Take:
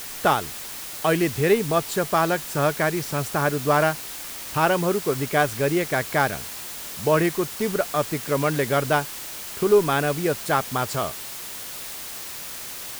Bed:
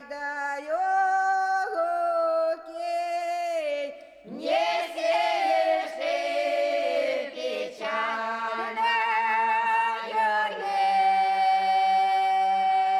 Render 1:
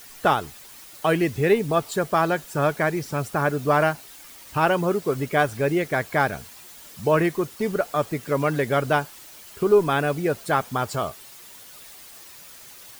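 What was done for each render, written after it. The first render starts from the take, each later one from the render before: noise reduction 11 dB, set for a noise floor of -35 dBFS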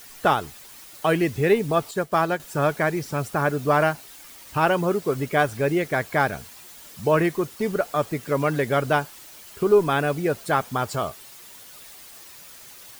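1.91–2.40 s: upward expansion, over -38 dBFS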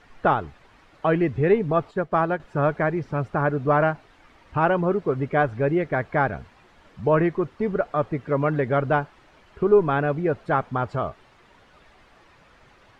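low-pass 1.8 kHz 12 dB/octave; bass shelf 66 Hz +10 dB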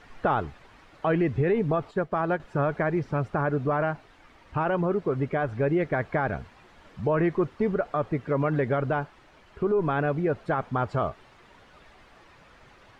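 peak limiter -16.5 dBFS, peak gain reduction 9 dB; gain riding 2 s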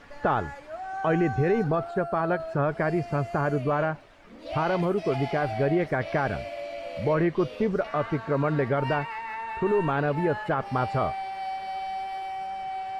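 add bed -10.5 dB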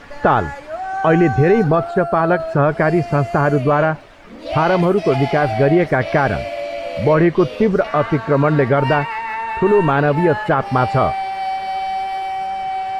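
trim +10.5 dB

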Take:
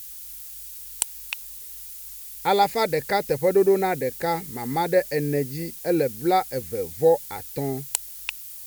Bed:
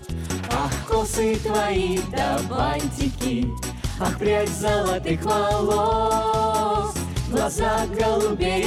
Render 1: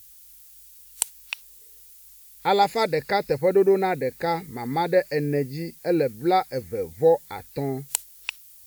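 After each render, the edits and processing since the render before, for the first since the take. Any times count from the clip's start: noise print and reduce 10 dB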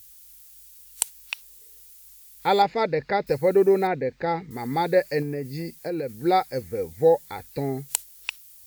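2.62–3.27 s: distance through air 200 m; 3.87–4.51 s: distance through air 190 m; 5.22–6.15 s: compression, threshold -25 dBFS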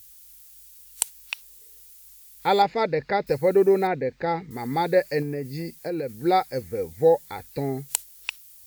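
no audible change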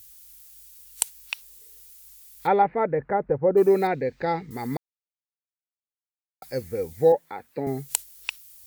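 2.46–3.56 s: low-pass 2.2 kHz -> 1.2 kHz 24 dB/octave; 4.77–6.42 s: mute; 7.12–7.67 s: three-band isolator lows -21 dB, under 160 Hz, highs -15 dB, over 2.4 kHz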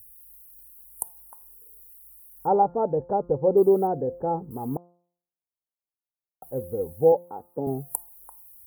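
inverse Chebyshev band-stop 2.2–5.2 kHz, stop band 60 dB; de-hum 174.5 Hz, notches 9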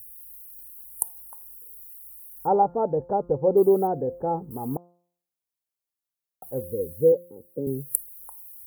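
6.62–8.20 s: time-frequency box 570–7300 Hz -29 dB; treble shelf 5 kHz +5.5 dB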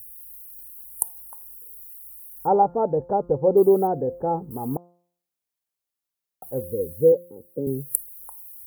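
trim +2 dB; peak limiter -1 dBFS, peak gain reduction 1 dB

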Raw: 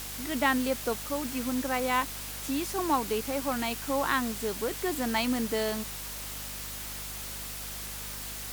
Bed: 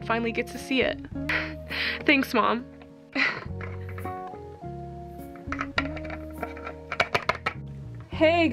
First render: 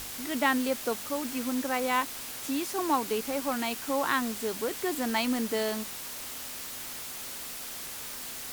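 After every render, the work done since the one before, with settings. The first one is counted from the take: de-hum 50 Hz, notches 4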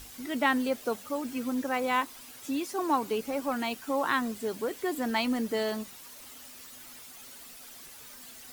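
noise reduction 11 dB, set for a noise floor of -40 dBFS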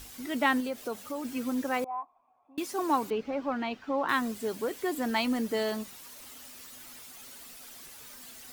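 0.60–1.25 s: compression 2:1, threshold -33 dBFS; 1.84–2.58 s: cascade formant filter a; 3.10–4.09 s: distance through air 220 m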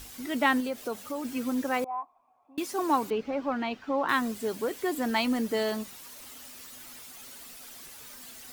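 trim +1.5 dB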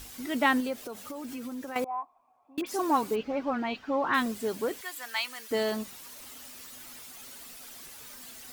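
0.82–1.76 s: compression, threshold -35 dBFS; 2.61–4.26 s: phase dispersion highs, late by 57 ms, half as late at 2.6 kHz; 4.81–5.51 s: high-pass 1.4 kHz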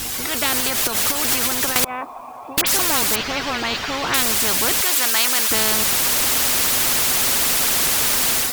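level rider gain up to 15 dB; spectrum-flattening compressor 4:1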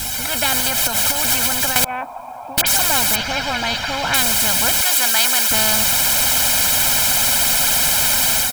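comb 1.3 ms, depth 84%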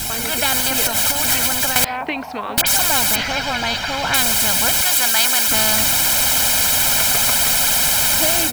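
add bed -5 dB

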